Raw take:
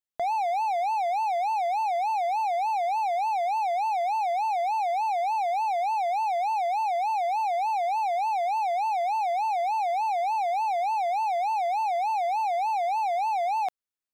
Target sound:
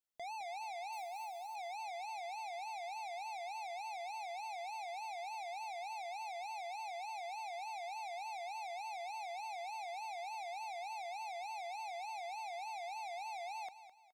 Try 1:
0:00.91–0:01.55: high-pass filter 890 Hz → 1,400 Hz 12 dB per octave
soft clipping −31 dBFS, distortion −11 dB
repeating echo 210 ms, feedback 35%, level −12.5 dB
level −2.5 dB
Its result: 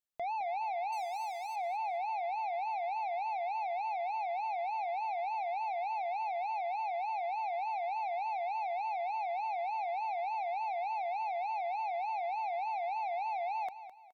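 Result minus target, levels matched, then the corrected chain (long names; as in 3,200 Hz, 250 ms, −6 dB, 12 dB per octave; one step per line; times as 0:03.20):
soft clipping: distortion −4 dB
0:00.91–0:01.55: high-pass filter 890 Hz → 1,400 Hz 12 dB per octave
soft clipping −41 dBFS, distortion −6 dB
repeating echo 210 ms, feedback 35%, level −12.5 dB
level −2.5 dB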